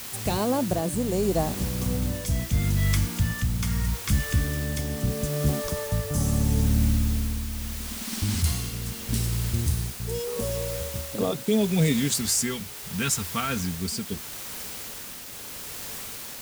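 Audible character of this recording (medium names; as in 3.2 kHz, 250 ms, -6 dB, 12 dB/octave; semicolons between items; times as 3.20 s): phasing stages 2, 0.21 Hz, lowest notch 550–2200 Hz; a quantiser's noise floor 6-bit, dither triangular; tremolo triangle 0.77 Hz, depth 40%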